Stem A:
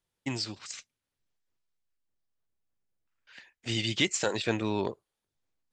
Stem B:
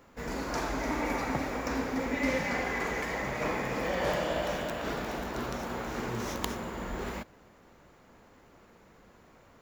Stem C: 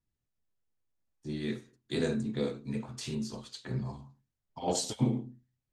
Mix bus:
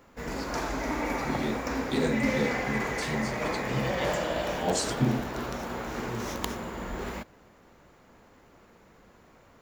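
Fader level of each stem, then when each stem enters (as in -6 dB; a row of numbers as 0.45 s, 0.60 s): -13.5 dB, +1.0 dB, +2.5 dB; 0.00 s, 0.00 s, 0.00 s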